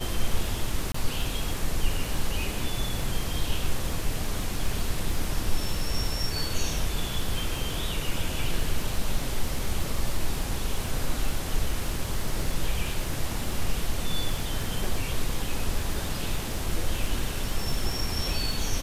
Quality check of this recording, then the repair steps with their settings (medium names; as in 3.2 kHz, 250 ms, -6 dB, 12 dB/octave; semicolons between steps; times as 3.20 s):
crackle 49 per s -32 dBFS
0.92–0.94 s: dropout 24 ms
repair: de-click; interpolate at 0.92 s, 24 ms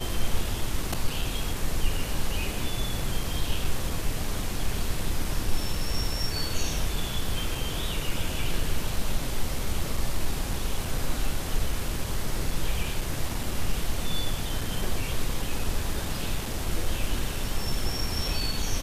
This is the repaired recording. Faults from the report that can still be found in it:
nothing left